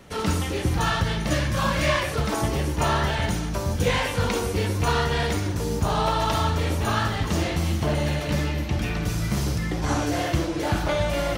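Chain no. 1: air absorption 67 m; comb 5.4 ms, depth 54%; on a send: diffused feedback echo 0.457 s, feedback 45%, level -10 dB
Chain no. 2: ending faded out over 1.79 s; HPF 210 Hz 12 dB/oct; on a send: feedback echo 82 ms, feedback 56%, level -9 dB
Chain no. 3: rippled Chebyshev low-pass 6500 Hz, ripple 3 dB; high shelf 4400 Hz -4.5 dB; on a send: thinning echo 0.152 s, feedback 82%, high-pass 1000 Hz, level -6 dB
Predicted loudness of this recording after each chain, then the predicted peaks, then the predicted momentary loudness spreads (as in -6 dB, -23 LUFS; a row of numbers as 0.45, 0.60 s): -24.0, -26.0, -26.5 LUFS; -8.0, -10.5, -11.5 dBFS; 4, 7, 4 LU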